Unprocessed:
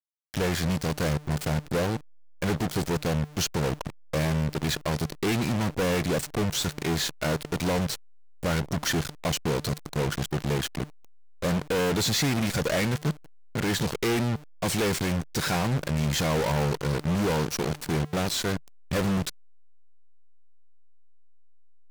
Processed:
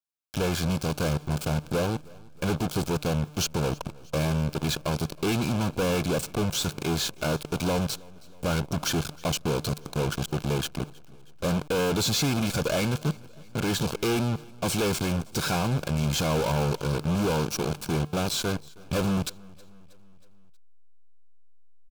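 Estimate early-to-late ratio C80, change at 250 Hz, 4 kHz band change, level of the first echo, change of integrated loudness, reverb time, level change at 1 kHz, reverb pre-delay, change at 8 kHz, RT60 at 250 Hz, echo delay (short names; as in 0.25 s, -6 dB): none, 0.0 dB, 0.0 dB, -24.0 dB, 0.0 dB, none, 0.0 dB, none, 0.0 dB, none, 0.318 s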